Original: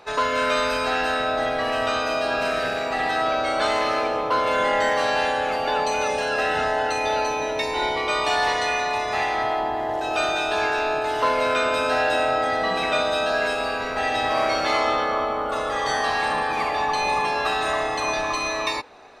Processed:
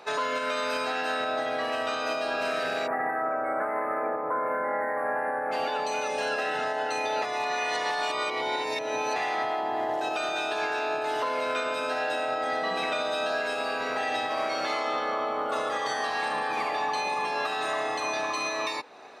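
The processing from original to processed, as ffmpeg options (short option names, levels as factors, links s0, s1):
-filter_complex "[0:a]asplit=3[s0][s1][s2];[s0]afade=t=out:st=2.86:d=0.02[s3];[s1]asuperstop=centerf=4700:order=12:qfactor=0.59,afade=t=in:st=2.86:d=0.02,afade=t=out:st=5.51:d=0.02[s4];[s2]afade=t=in:st=5.51:d=0.02[s5];[s3][s4][s5]amix=inputs=3:normalize=0,asplit=3[s6][s7][s8];[s6]atrim=end=7.222[s9];[s7]atrim=start=7.218:end=9.162,asetpts=PTS-STARTPTS,areverse[s10];[s8]atrim=start=9.158[s11];[s9][s10]acrossfade=d=0.004:c1=hsin:c2=hsin[s12];[s12][s11]acrossfade=d=0.004:c1=hsin:c2=hsin,highpass=180,alimiter=limit=0.106:level=0:latency=1:release=375"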